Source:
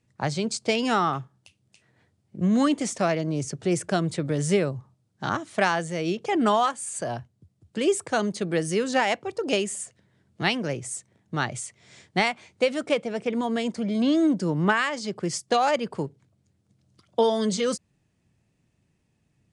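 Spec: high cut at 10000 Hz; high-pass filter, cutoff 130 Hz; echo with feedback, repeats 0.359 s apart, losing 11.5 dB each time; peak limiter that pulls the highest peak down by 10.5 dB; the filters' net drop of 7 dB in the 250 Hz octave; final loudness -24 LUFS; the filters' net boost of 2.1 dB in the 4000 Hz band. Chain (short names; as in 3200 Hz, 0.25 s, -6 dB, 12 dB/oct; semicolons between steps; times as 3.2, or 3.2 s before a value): HPF 130 Hz; LPF 10000 Hz; bell 250 Hz -9 dB; bell 4000 Hz +3 dB; limiter -18 dBFS; feedback echo 0.359 s, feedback 27%, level -11.5 dB; gain +6.5 dB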